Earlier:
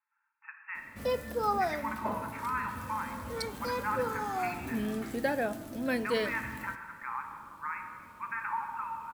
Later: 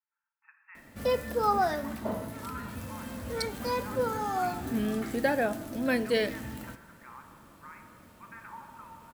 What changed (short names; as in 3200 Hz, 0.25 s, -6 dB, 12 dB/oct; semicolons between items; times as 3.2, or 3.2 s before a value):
speech -11.5 dB; background +3.5 dB